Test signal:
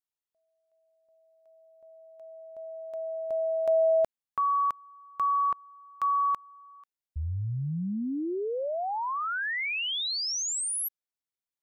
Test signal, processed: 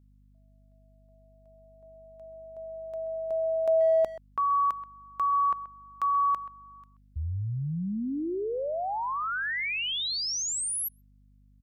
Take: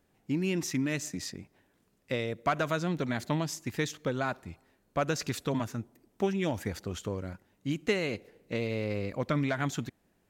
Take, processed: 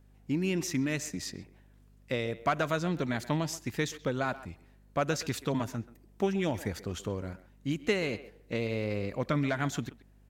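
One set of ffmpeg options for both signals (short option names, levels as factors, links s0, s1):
-filter_complex "[0:a]asplit=2[s0][s1];[s1]adelay=130,highpass=300,lowpass=3400,asoftclip=type=hard:threshold=0.075,volume=0.178[s2];[s0][s2]amix=inputs=2:normalize=0,aeval=exprs='val(0)+0.00126*(sin(2*PI*50*n/s)+sin(2*PI*2*50*n/s)/2+sin(2*PI*3*50*n/s)/3+sin(2*PI*4*50*n/s)/4+sin(2*PI*5*50*n/s)/5)':c=same"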